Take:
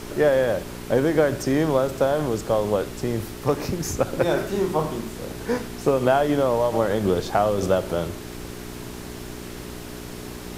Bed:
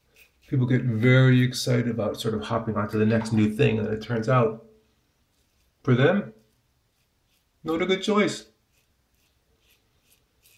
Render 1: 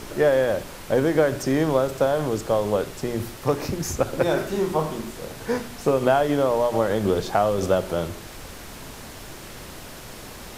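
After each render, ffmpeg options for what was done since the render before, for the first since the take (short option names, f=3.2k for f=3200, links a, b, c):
-af "bandreject=f=60:t=h:w=4,bandreject=f=120:t=h:w=4,bandreject=f=180:t=h:w=4,bandreject=f=240:t=h:w=4,bandreject=f=300:t=h:w=4,bandreject=f=360:t=h:w=4,bandreject=f=420:t=h:w=4"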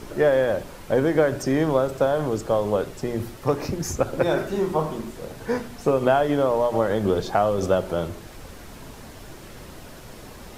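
-af "afftdn=nr=6:nf=-40"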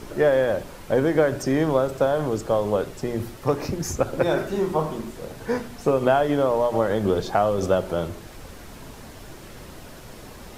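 -af anull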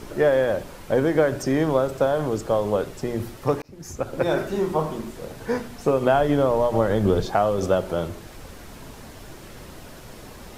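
-filter_complex "[0:a]asettb=1/sr,asplit=3[a][b][c];[a]atrim=end=6.144[d];[b]atrim=start=6.14:end=7.26,asetpts=PTS-STARTPTS,afade=t=in:d=0.004:c=qsin,afade=t=out:st=1.116:d=0.004:c=qsin,lowshelf=f=150:g=8.5[e];[c]atrim=start=7.256[f];[d][e]acrossfade=d=0.004:c1=hsin:c2=qsin[g];[g][f]acrossfade=d=0.004:c1=qsin:c2=hsin,asplit=2[h][i];[h]atrim=end=3.62,asetpts=PTS-STARTPTS,afade=t=out:st=3.616:d=0.004:c=hsin[j];[i]atrim=start=3.62,asetpts=PTS-STARTPTS,afade=t=in:d=0.71[k];[j][k]concat=n=2:v=0:a=1"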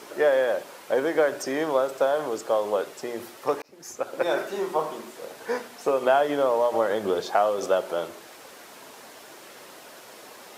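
-af "highpass=450"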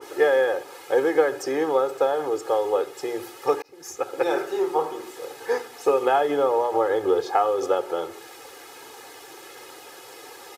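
-af "aecho=1:1:2.4:0.87,adynamicequalizer=threshold=0.0141:dfrequency=1900:dqfactor=0.7:tfrequency=1900:tqfactor=0.7:attack=5:release=100:ratio=0.375:range=3:mode=cutabove:tftype=highshelf"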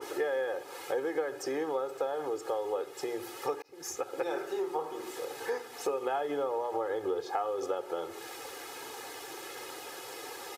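-af "acompressor=threshold=-35dB:ratio=2.5"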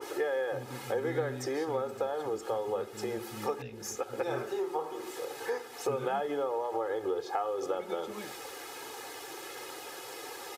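-filter_complex "[1:a]volume=-23dB[a];[0:a][a]amix=inputs=2:normalize=0"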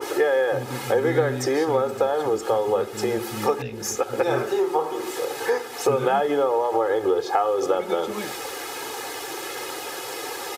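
-af "volume=11dB"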